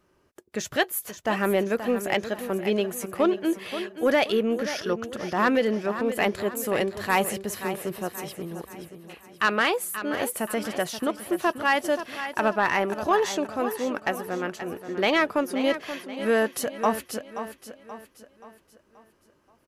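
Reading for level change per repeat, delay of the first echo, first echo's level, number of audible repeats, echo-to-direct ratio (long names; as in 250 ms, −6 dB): −7.0 dB, 529 ms, −11.0 dB, 4, −10.0 dB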